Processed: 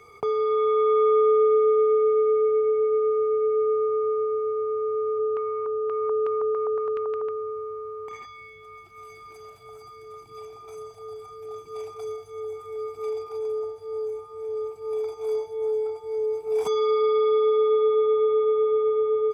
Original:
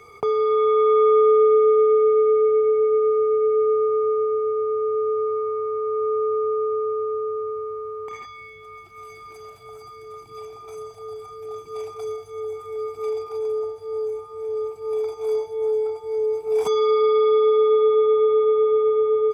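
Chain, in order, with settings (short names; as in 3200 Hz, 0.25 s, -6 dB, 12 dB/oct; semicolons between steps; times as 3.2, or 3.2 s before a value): 5.18–7.3 LFO low-pass square 1.3 Hz -> 7.3 Hz 840–2600 Hz; gain -3.5 dB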